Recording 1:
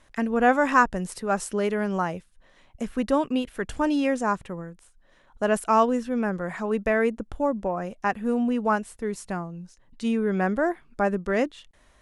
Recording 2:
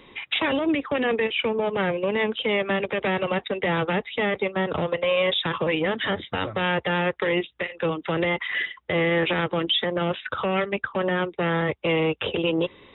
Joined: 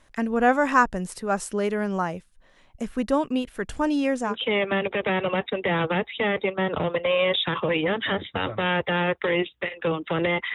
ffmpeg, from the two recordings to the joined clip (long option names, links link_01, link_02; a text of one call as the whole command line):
ffmpeg -i cue0.wav -i cue1.wav -filter_complex "[0:a]apad=whole_dur=10.54,atrim=end=10.54,atrim=end=4.36,asetpts=PTS-STARTPTS[link_01];[1:a]atrim=start=2.22:end=8.52,asetpts=PTS-STARTPTS[link_02];[link_01][link_02]acrossfade=duration=0.12:curve1=tri:curve2=tri" out.wav